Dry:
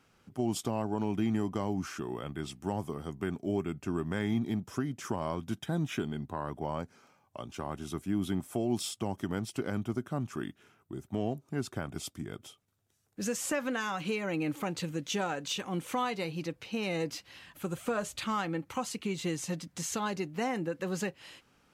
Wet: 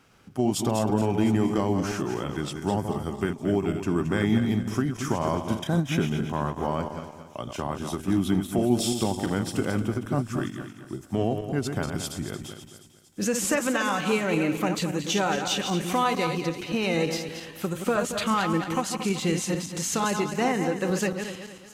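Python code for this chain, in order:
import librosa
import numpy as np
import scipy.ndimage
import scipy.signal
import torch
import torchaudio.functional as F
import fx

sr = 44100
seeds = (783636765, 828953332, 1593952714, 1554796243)

y = fx.reverse_delay_fb(x, sr, ms=113, feedback_pct=60, wet_db=-6.5)
y = fx.echo_wet_highpass(y, sr, ms=706, feedback_pct=58, hz=5500.0, wet_db=-16)
y = fx.end_taper(y, sr, db_per_s=220.0)
y = F.gain(torch.from_numpy(y), 7.0).numpy()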